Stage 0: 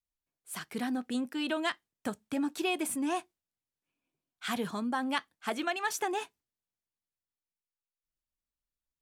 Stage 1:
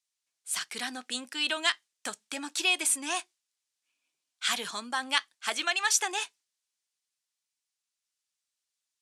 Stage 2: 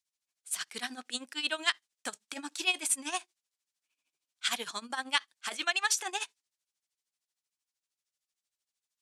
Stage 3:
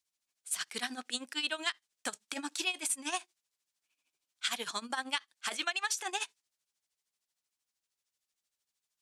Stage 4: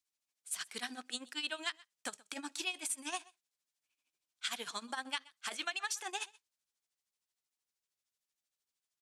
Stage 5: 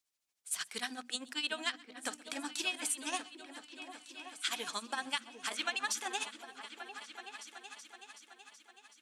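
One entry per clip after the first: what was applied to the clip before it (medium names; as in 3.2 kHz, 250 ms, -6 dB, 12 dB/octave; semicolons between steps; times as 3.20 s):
frequency weighting ITU-R 468; trim +1 dB
tremolo 13 Hz, depth 79%
compression 5:1, threshold -32 dBFS, peak gain reduction 10.5 dB; trim +2 dB
delay 127 ms -23 dB; trim -4.5 dB
hum notches 60/120/180/240 Hz; delay with an opening low-pass 376 ms, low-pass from 200 Hz, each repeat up 2 oct, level -6 dB; trim +2.5 dB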